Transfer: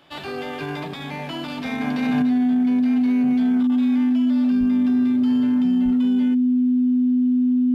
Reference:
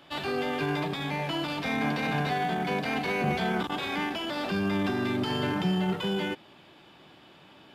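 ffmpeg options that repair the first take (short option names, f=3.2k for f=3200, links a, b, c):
-filter_complex "[0:a]bandreject=f=250:w=30,asplit=3[a][b][c];[a]afade=t=out:st=4.59:d=0.02[d];[b]highpass=f=140:w=0.5412,highpass=f=140:w=1.3066,afade=t=in:st=4.59:d=0.02,afade=t=out:st=4.71:d=0.02[e];[c]afade=t=in:st=4.71:d=0.02[f];[d][e][f]amix=inputs=3:normalize=0,asplit=3[g][h][i];[g]afade=t=out:st=5.84:d=0.02[j];[h]highpass=f=140:w=0.5412,highpass=f=140:w=1.3066,afade=t=in:st=5.84:d=0.02,afade=t=out:st=5.96:d=0.02[k];[i]afade=t=in:st=5.96:d=0.02[l];[j][k][l]amix=inputs=3:normalize=0,asetnsamples=n=441:p=0,asendcmd='2.22 volume volume 8.5dB',volume=0dB"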